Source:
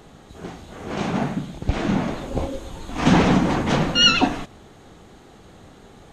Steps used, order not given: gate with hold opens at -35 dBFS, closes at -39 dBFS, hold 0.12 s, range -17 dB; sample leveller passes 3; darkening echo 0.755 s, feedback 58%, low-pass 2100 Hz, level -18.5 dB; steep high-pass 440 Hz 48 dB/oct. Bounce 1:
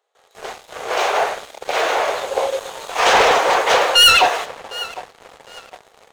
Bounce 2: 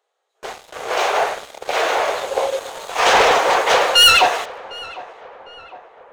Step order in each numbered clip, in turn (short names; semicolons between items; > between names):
darkening echo > gate with hold > steep high-pass > sample leveller; steep high-pass > gate with hold > sample leveller > darkening echo